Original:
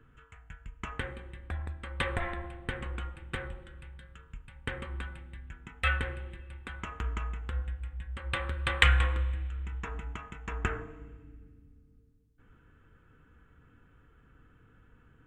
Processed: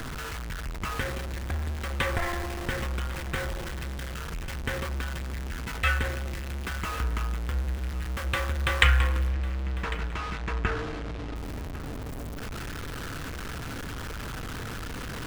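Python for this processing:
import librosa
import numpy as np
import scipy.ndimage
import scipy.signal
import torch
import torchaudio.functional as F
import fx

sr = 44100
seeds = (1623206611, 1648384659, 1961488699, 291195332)

y = x + 0.5 * 10.0 ** (-31.5 / 20.0) * np.sign(x)
y = fx.lowpass(y, sr, hz=4600.0, slope=12, at=(9.27, 11.35))
y = y + 10.0 ** (-17.5 / 20.0) * np.pad(y, (int(1100 * sr / 1000.0), 0))[:len(y)]
y = y * librosa.db_to_amplitude(1.5)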